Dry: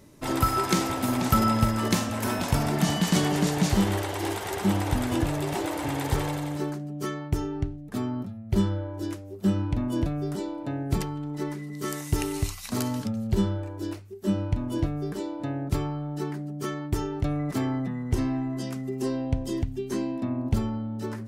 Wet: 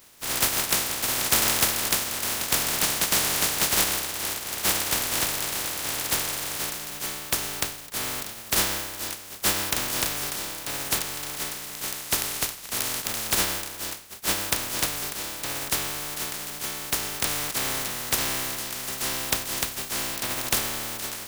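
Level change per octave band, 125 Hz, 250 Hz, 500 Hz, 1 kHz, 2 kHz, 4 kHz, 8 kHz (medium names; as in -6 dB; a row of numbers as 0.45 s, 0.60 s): -13.0 dB, -12.5 dB, -4.5 dB, -1.5 dB, +7.5 dB, +10.0 dB, +13.0 dB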